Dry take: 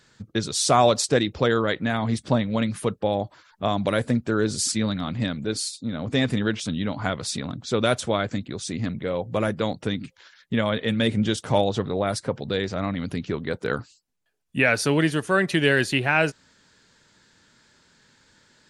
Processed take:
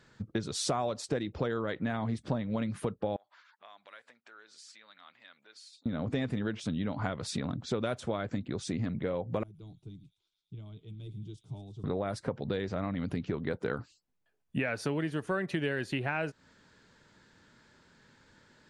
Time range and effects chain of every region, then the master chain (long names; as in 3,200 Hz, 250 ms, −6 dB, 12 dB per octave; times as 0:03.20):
0:03.16–0:05.86: downward compressor 3 to 1, threshold −41 dBFS + high-pass filter 1,400 Hz + high-frequency loss of the air 63 metres
0:09.43–0:11.84: guitar amp tone stack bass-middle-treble 10-0-1 + phaser with its sweep stopped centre 350 Hz, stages 8 + delay with a high-pass on its return 111 ms, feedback 79%, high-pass 3,900 Hz, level −10 dB
whole clip: high-shelf EQ 3,100 Hz −11.5 dB; downward compressor 6 to 1, threshold −29 dBFS